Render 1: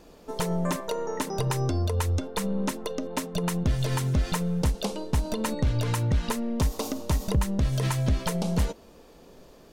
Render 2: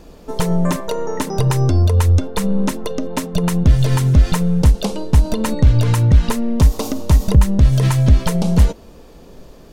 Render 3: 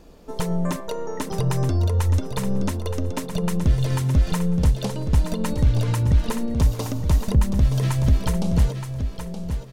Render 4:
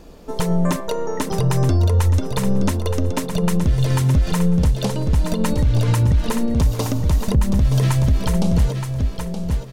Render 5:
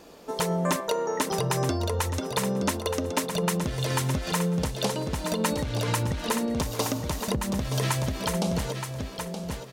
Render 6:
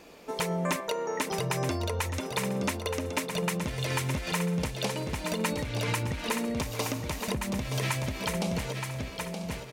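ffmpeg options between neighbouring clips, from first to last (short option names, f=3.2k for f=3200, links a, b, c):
-af "lowshelf=f=170:g=9,volume=6.5dB"
-af "aecho=1:1:922|1844|2766:0.376|0.0827|0.0182,volume=-7dB"
-af "alimiter=limit=-14.5dB:level=0:latency=1:release=78,volume=5.5dB"
-af "highpass=f=470:p=1"
-filter_complex "[0:a]equalizer=f=2.3k:w=2.6:g=8.5,asplit=2[a][b];[b]alimiter=limit=-18.5dB:level=0:latency=1:release=361,volume=-2.5dB[c];[a][c]amix=inputs=2:normalize=0,aecho=1:1:992:0.178,volume=-7.5dB"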